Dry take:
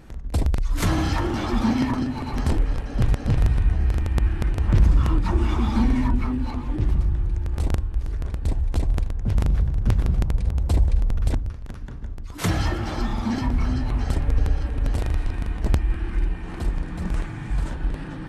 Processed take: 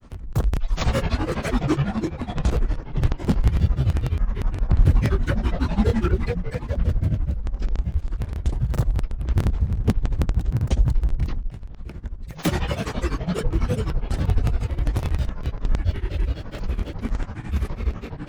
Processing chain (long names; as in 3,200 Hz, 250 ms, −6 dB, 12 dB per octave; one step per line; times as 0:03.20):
granular cloud 110 ms, grains 12 per second, spray 17 ms, pitch spread up and down by 12 semitones
level +2.5 dB